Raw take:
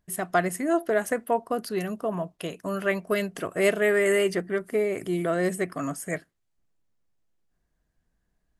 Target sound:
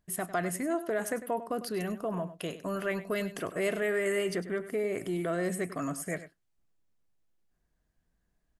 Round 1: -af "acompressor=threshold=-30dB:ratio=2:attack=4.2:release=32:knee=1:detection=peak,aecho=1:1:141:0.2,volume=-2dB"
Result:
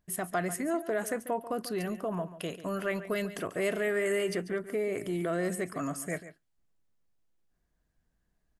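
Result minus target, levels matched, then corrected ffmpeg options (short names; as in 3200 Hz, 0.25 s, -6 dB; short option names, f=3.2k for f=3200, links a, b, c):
echo 41 ms late
-af "acompressor=threshold=-30dB:ratio=2:attack=4.2:release=32:knee=1:detection=peak,aecho=1:1:100:0.2,volume=-2dB"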